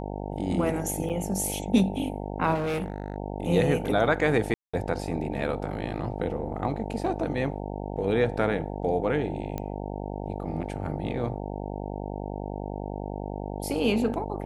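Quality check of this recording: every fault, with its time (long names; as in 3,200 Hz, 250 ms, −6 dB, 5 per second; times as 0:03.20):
mains buzz 50 Hz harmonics 18 −34 dBFS
0:01.09–0:01.10: drop-out 7.8 ms
0:02.54–0:03.16: clipping −25.5 dBFS
0:04.54–0:04.74: drop-out 195 ms
0:09.58: click −18 dBFS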